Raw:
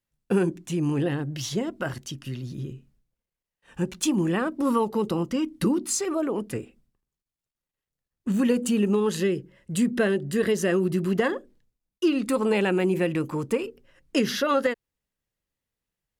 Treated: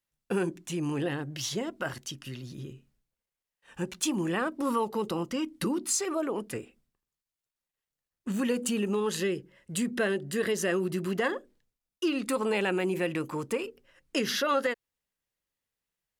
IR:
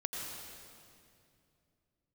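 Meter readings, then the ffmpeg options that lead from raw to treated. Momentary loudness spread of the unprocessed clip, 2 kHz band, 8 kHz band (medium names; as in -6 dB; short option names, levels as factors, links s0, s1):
12 LU, -1.5 dB, -1.0 dB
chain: -filter_complex "[0:a]asplit=2[s0][s1];[s1]alimiter=limit=0.133:level=0:latency=1,volume=0.841[s2];[s0][s2]amix=inputs=2:normalize=0,lowshelf=f=380:g=-8.5,volume=0.531"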